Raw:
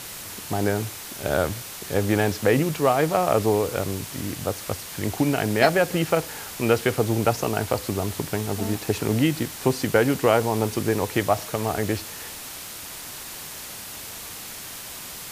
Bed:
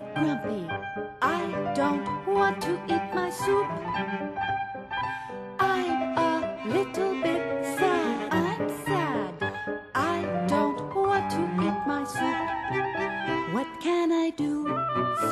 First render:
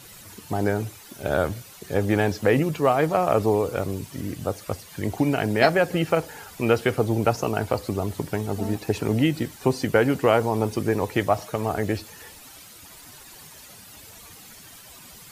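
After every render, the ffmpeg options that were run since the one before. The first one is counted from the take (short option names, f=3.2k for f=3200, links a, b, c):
-af "afftdn=nr=12:nf=-37"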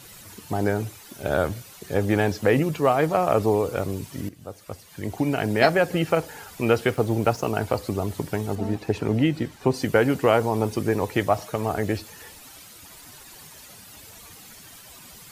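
-filter_complex "[0:a]asettb=1/sr,asplit=3[a][b][c];[a]atrim=end=6.904[d];[b]atrim=start=6.9:end=7.49,asetpts=PTS-STARTPTS,afade=t=in:d=0.004:c=qsin,afade=t=out:st=0.586:d=0.004:c=qsin,aeval=exprs='sgn(val(0))*max(abs(val(0))-0.00501,0)':c=same[e];[c]atrim=start=7.486[f];[d][e]acrossfade=d=0.004:c1=hsin:c2=qsin[g];[g][f]acrossfade=d=0.004:c1=qsin:c2=hsin,asettb=1/sr,asplit=3[h][i][j];[h]atrim=end=8.554[k];[i]atrim=start=8.55:end=9.74,asetpts=PTS-STARTPTS,afade=t=in:d=0.004:c=qsin,afade=t=out:st=1.186:d=0.004:c=qsin,lowpass=f=3.4k:p=1[l];[j]atrim=start=9.736[m];[k][l]acrossfade=d=0.004:c1=hsin:c2=qsin[n];[n][m]acrossfade=d=0.004:c1=qsin:c2=hsin,asplit=2[o][p];[o]atrim=end=4.29,asetpts=PTS-STARTPTS,afade=t=out:st=4.286:d=0.004:c=hsin:silence=0.158489[q];[p]atrim=start=4.29,asetpts=PTS-STARTPTS,afade=t=in:d=1.25:silence=0.158489[r];[q][r]concat=n=2:v=0:a=1"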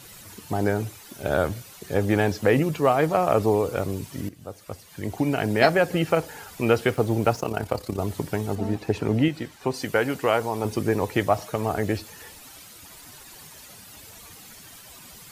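-filter_complex "[0:a]asettb=1/sr,asplit=3[a][b][c];[a]atrim=end=7.404[d];[b]atrim=start=7.4:end=7.99,asetpts=PTS-STARTPTS,afade=t=in:d=0.004:c=qsin,afade=t=out:st=0.586:d=0.004:c=qsin,tremolo=f=34:d=0.667[e];[c]atrim=start=7.986[f];[d][e]acrossfade=d=0.004:c1=hsin:c2=qsin[g];[g][f]acrossfade=d=0.004:c1=qsin:c2=hsin,asettb=1/sr,asplit=3[h][i][j];[h]atrim=end=9.284[k];[i]atrim=start=9.28:end=10.65,asetpts=PTS-STARTPTS,afade=t=in:d=0.004:c=qsin,afade=t=out:st=1.366:d=0.004:c=qsin,lowshelf=f=490:g=-7.5[l];[j]atrim=start=10.646[m];[k][l]acrossfade=d=0.004:c1=hsin:c2=qsin[n];[n][m]acrossfade=d=0.004:c1=qsin:c2=hsin"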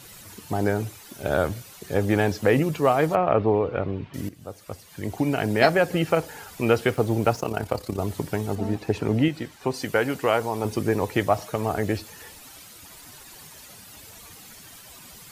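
-filter_complex "[0:a]asettb=1/sr,asplit=3[a][b][c];[a]atrim=end=3.154[d];[b]atrim=start=3.15:end=4.14,asetpts=PTS-STARTPTS,afade=t=in:d=0.004:c=qsin,afade=t=out:st=0.986:d=0.004:c=qsin,lowpass=f=3k:w=0.5412,lowpass=f=3k:w=1.3066[e];[c]atrim=start=4.136[f];[d][e]acrossfade=d=0.004:c1=hsin:c2=qsin[g];[g][f]acrossfade=d=0.004:c1=qsin:c2=hsin"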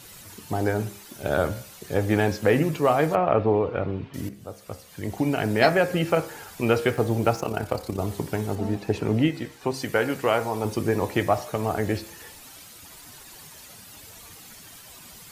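-af "bandreject=f=67.14:t=h:w=4,bandreject=f=134.28:t=h:w=4,bandreject=f=201.42:t=h:w=4,bandreject=f=268.56:t=h:w=4,bandreject=f=335.7:t=h:w=4,bandreject=f=402.84:t=h:w=4,bandreject=f=469.98:t=h:w=4,bandreject=f=537.12:t=h:w=4,bandreject=f=604.26:t=h:w=4,bandreject=f=671.4:t=h:w=4,bandreject=f=738.54:t=h:w=4,bandreject=f=805.68:t=h:w=4,bandreject=f=872.82:t=h:w=4,bandreject=f=939.96:t=h:w=4,bandreject=f=1.0071k:t=h:w=4,bandreject=f=1.07424k:t=h:w=4,bandreject=f=1.14138k:t=h:w=4,bandreject=f=1.20852k:t=h:w=4,bandreject=f=1.27566k:t=h:w=4,bandreject=f=1.3428k:t=h:w=4,bandreject=f=1.40994k:t=h:w=4,bandreject=f=1.47708k:t=h:w=4,bandreject=f=1.54422k:t=h:w=4,bandreject=f=1.61136k:t=h:w=4,bandreject=f=1.6785k:t=h:w=4,bandreject=f=1.74564k:t=h:w=4,bandreject=f=1.81278k:t=h:w=4,bandreject=f=1.87992k:t=h:w=4,bandreject=f=1.94706k:t=h:w=4,bandreject=f=2.0142k:t=h:w=4,bandreject=f=2.08134k:t=h:w=4,bandreject=f=2.14848k:t=h:w=4,bandreject=f=2.21562k:t=h:w=4,bandreject=f=2.28276k:t=h:w=4,bandreject=f=2.3499k:t=h:w=4,bandreject=f=2.41704k:t=h:w=4,bandreject=f=2.48418k:t=h:w=4,bandreject=f=2.55132k:t=h:w=4,bandreject=f=2.61846k:t=h:w=4"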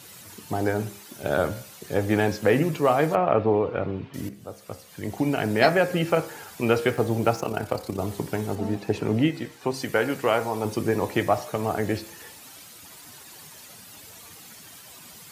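-af "highpass=96"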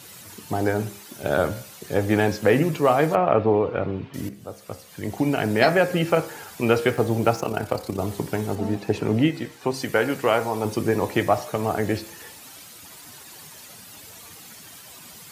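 -af "volume=2dB,alimiter=limit=-3dB:level=0:latency=1"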